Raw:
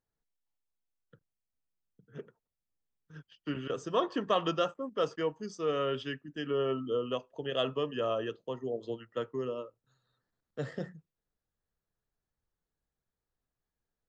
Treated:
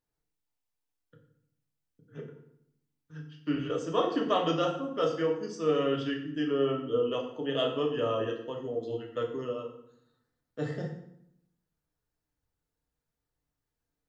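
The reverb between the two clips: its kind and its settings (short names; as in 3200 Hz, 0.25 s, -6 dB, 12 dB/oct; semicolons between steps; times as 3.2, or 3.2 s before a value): FDN reverb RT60 0.72 s, low-frequency decay 1.4×, high-frequency decay 0.8×, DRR -0.5 dB; gain -1 dB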